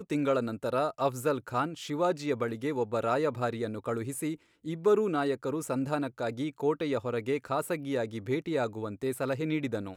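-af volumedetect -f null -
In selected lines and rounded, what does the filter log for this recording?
mean_volume: -30.7 dB
max_volume: -15.1 dB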